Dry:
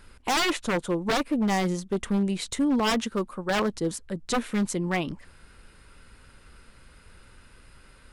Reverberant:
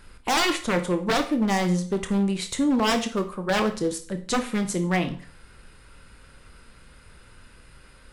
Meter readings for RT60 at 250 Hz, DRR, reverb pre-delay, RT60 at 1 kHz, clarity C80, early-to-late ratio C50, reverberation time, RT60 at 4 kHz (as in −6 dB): 0.45 s, 7.0 dB, 20 ms, 0.40 s, 16.5 dB, 12.0 dB, 0.40 s, 0.40 s